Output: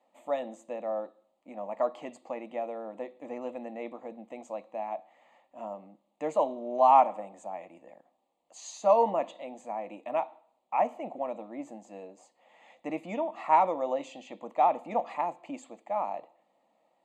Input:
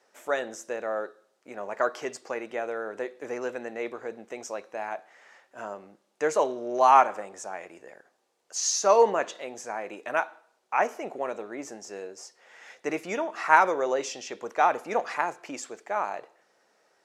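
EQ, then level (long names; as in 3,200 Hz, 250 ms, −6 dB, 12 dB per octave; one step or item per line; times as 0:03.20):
moving average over 8 samples
low-shelf EQ 180 Hz +5 dB
phaser with its sweep stopped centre 410 Hz, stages 6
0.0 dB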